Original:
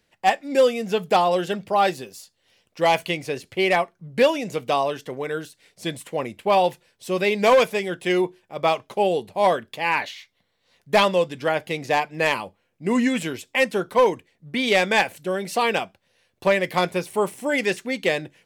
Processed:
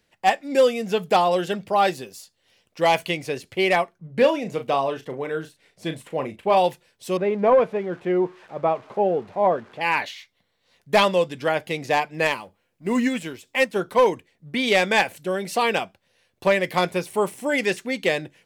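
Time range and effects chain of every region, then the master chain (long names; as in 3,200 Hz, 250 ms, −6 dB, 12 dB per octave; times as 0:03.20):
0:03.98–0:06.57: high-shelf EQ 3,200 Hz −9 dB + double-tracking delay 37 ms −9 dB
0:07.17–0:09.81: spike at every zero crossing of −19.5 dBFS + low-pass filter 1,100 Hz
0:12.27–0:13.76: mu-law and A-law mismatch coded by mu + expander for the loud parts, over −35 dBFS
whole clip: no processing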